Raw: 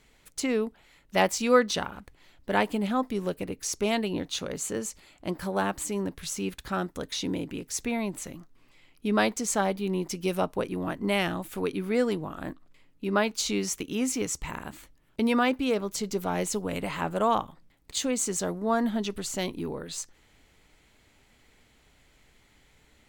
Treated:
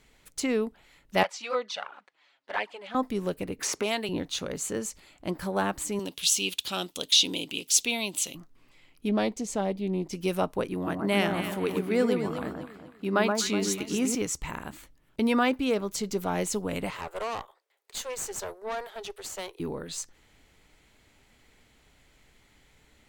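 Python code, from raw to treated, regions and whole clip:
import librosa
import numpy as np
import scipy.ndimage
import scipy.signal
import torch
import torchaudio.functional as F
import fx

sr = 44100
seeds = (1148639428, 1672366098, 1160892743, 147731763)

y = fx.chain(x, sr, fx.bandpass_edges(low_hz=700.0, high_hz=4600.0),
    fx.env_flanger(rest_ms=8.0, full_db=-21.0), at=(1.23, 2.95))
y = fx.chain(y, sr, fx.highpass(hz=460.0, slope=6),
    fx.band_squash(depth_pct=70), at=(3.59, 4.09))
y = fx.chain(y, sr, fx.highpass(hz=370.0, slope=6),
    fx.high_shelf_res(hz=2300.0, db=9.5, q=3.0), at=(5.99, 8.35))
y = fx.chain(y, sr, fx.lowpass(hz=3200.0, slope=6),
    fx.peak_eq(hz=1400.0, db=-11.0, octaves=1.2),
    fx.doppler_dist(depth_ms=0.17), at=(9.09, 10.13))
y = fx.chain(y, sr, fx.highpass(hz=71.0, slope=12),
    fx.echo_alternate(ms=124, hz=1500.0, feedback_pct=59, wet_db=-3.5), at=(10.74, 14.15))
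y = fx.chain(y, sr, fx.steep_highpass(hz=380.0, slope=72),
    fx.tube_stage(drive_db=29.0, bias=0.75), at=(16.9, 19.6))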